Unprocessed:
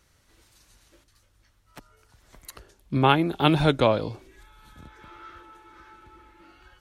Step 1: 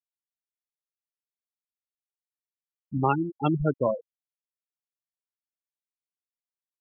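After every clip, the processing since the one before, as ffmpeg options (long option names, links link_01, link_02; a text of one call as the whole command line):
ffmpeg -i in.wav -af "afftfilt=real='re*gte(hypot(re,im),0.316)':imag='im*gte(hypot(re,im),0.316)':win_size=1024:overlap=0.75,volume=-3.5dB" out.wav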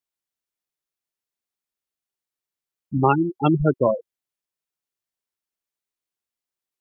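ffmpeg -i in.wav -af "equalizer=frequency=370:width_type=o:width=0.25:gain=4.5,volume=5.5dB" out.wav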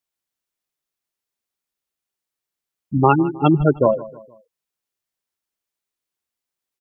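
ffmpeg -i in.wav -af "aecho=1:1:156|312|468:0.126|0.0516|0.0212,volume=3.5dB" out.wav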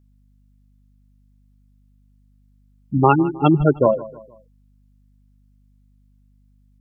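ffmpeg -i in.wav -af "aeval=exprs='val(0)+0.00178*(sin(2*PI*50*n/s)+sin(2*PI*2*50*n/s)/2+sin(2*PI*3*50*n/s)/3+sin(2*PI*4*50*n/s)/4+sin(2*PI*5*50*n/s)/5)':channel_layout=same" out.wav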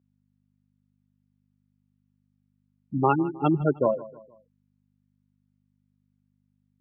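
ffmpeg -i in.wav -af "highpass=130,lowpass=2700,volume=-7dB" out.wav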